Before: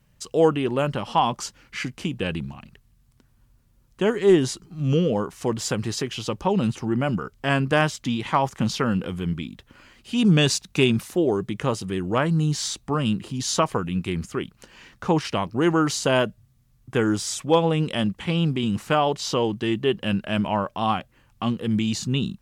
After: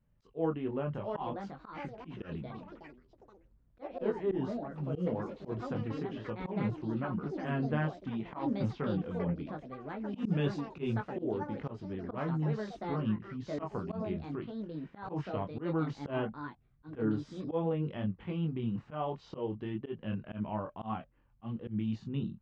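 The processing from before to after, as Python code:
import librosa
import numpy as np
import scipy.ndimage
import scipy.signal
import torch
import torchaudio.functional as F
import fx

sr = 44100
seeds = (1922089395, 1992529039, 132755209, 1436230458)

y = fx.chorus_voices(x, sr, voices=6, hz=0.24, base_ms=23, depth_ms=4.9, mix_pct=40)
y = fx.echo_pitch(y, sr, ms=785, semitones=5, count=3, db_per_echo=-6.0)
y = fx.auto_swell(y, sr, attack_ms=107.0)
y = fx.spacing_loss(y, sr, db_at_10k=43)
y = y * librosa.db_to_amplitude(-7.0)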